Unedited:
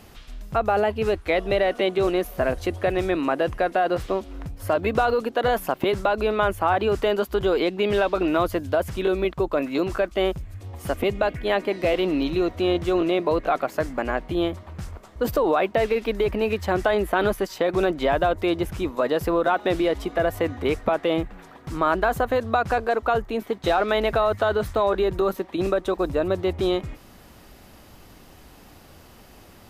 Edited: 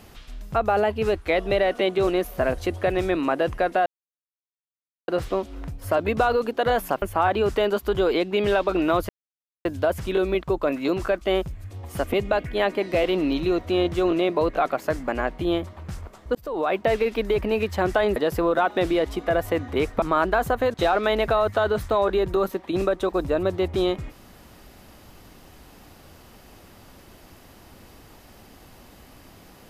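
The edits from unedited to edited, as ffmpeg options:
ffmpeg -i in.wav -filter_complex "[0:a]asplit=8[link_01][link_02][link_03][link_04][link_05][link_06][link_07][link_08];[link_01]atrim=end=3.86,asetpts=PTS-STARTPTS,afade=type=out:start_time=3.856:duration=0.004:curve=hsin,apad=pad_dur=1.22[link_09];[link_02]atrim=start=3.86:end=5.802,asetpts=PTS-STARTPTS,afade=type=in:duration=0.004:curve=hsin[link_10];[link_03]atrim=start=6.478:end=8.55,asetpts=PTS-STARTPTS,afade=type=out:start_time=2.068:duration=0.004:curve=hsin,apad=pad_dur=0.56[link_11];[link_04]atrim=start=8.55:end=15.25,asetpts=PTS-STARTPTS,afade=type=in:duration=0.004:curve=hsin,afade=type=out:start_time=6.696:duration=0.004:curve=hsin[link_12];[link_05]atrim=start=15.25:end=17.062,asetpts=PTS-STARTPTS,afade=type=in:duration=0.45[link_13];[link_06]atrim=start=19.048:end=20.912[link_14];[link_07]atrim=start=21.718:end=22.442[link_15];[link_08]atrim=start=23.588[link_16];[link_09][link_10]concat=n=2:v=0:a=1[link_17];[link_11][link_12][link_13]concat=n=3:v=0:a=1[link_18];[link_17][link_18]acrossfade=duration=0.004:curve1=hsin:curve2=hsin[link_19];[link_19][link_14]acrossfade=duration=0.004:curve1=hsin:curve2=hsin[link_20];[link_20][link_15]acrossfade=duration=0.004:curve1=hsin:curve2=hsin[link_21];[link_21][link_16]acrossfade=duration=0.004:curve1=hsin:curve2=hsin" out.wav

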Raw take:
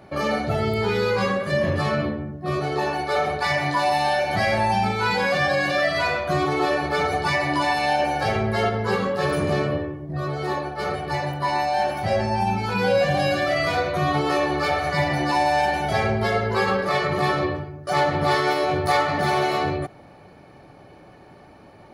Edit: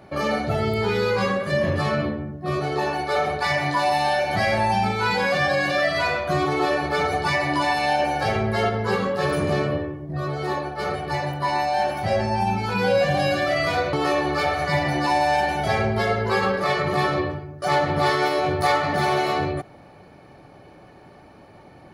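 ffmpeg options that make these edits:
ffmpeg -i in.wav -filter_complex "[0:a]asplit=2[link_01][link_02];[link_01]atrim=end=13.932[link_03];[link_02]atrim=start=14.178[link_04];[link_03][link_04]acrossfade=duration=0.004:curve1=hsin:curve2=hsin" out.wav

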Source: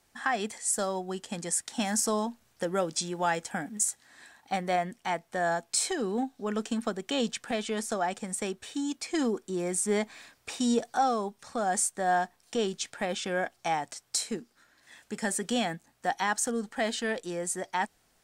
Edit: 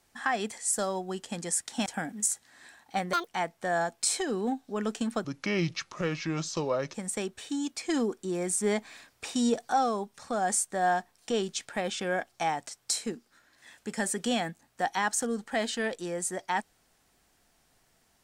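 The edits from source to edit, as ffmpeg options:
ffmpeg -i in.wav -filter_complex "[0:a]asplit=6[link_01][link_02][link_03][link_04][link_05][link_06];[link_01]atrim=end=1.862[link_07];[link_02]atrim=start=3.428:end=4.704[link_08];[link_03]atrim=start=4.7:end=4.98,asetpts=PTS-STARTPTS,asetrate=85995,aresample=44100,atrim=end_sample=6332,asetpts=PTS-STARTPTS[link_09];[link_04]atrim=start=4.976:end=6.954[link_10];[link_05]atrim=start=6.95:end=8.19,asetpts=PTS-STARTPTS,asetrate=32193,aresample=44100[link_11];[link_06]atrim=start=8.186[link_12];[link_07][link_08]acrossfade=duration=0.004:curve1=hsin:curve2=hsin[link_13];[link_13][link_09]acrossfade=duration=0.004:curve1=hsin:curve2=hsin[link_14];[link_14][link_10]acrossfade=duration=0.004:curve1=hsin:curve2=hsin[link_15];[link_15][link_11]acrossfade=duration=0.004:curve1=hsin:curve2=hsin[link_16];[link_16][link_12]acrossfade=duration=0.004:curve1=hsin:curve2=hsin" out.wav

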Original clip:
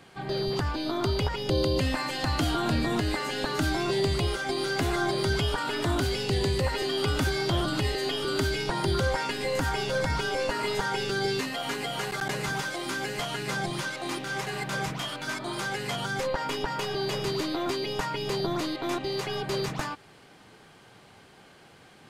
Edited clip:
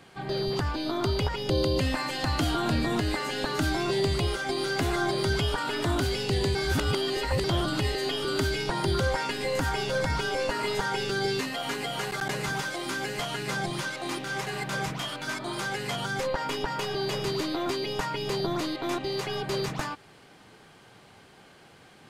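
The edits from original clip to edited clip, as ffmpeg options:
ffmpeg -i in.wav -filter_complex "[0:a]asplit=3[link_01][link_02][link_03];[link_01]atrim=end=6.552[link_04];[link_02]atrim=start=6.548:end=7.442,asetpts=PTS-STARTPTS,areverse[link_05];[link_03]atrim=start=7.438[link_06];[link_04][link_05]acrossfade=duration=0.004:curve1=hsin:curve2=hsin[link_07];[link_07][link_06]acrossfade=duration=0.004:curve1=hsin:curve2=hsin" out.wav

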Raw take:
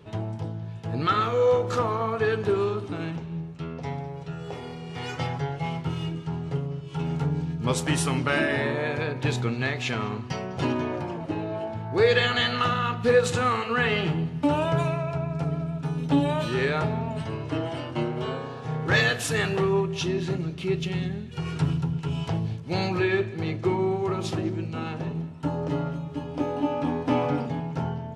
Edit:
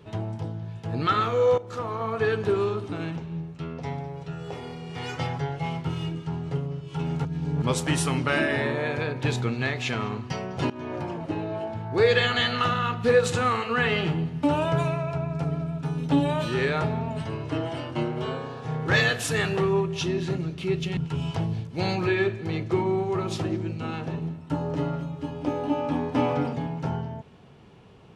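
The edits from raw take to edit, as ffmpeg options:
ffmpeg -i in.wav -filter_complex "[0:a]asplit=6[link_01][link_02][link_03][link_04][link_05][link_06];[link_01]atrim=end=1.58,asetpts=PTS-STARTPTS,afade=type=out:start_time=1.576:duration=0.004:curve=hsin:silence=0.16788[link_07];[link_02]atrim=start=1.58:end=7.252,asetpts=PTS-STARTPTS,afade=type=in:duration=0.64:silence=0.16788[link_08];[link_03]atrim=start=7.248:end=7.622,asetpts=PTS-STARTPTS,areverse[link_09];[link_04]atrim=start=7.618:end=10.7,asetpts=PTS-STARTPTS,afade=type=out:start_time=3.078:duration=0.004:curve=hsin:silence=0.0944061[link_10];[link_05]atrim=start=10.7:end=20.972,asetpts=PTS-STARTPTS,afade=type=in:duration=0.32:silence=0.0944061[link_11];[link_06]atrim=start=21.898[link_12];[link_07][link_08]concat=n=2:v=0:a=1[link_13];[link_13][link_09]acrossfade=duration=0.004:curve1=hsin:curve2=hsin[link_14];[link_10][link_11]concat=n=2:v=0:a=1[link_15];[link_14][link_15]acrossfade=duration=0.004:curve1=hsin:curve2=hsin[link_16];[link_16][link_12]acrossfade=duration=0.004:curve1=hsin:curve2=hsin" out.wav

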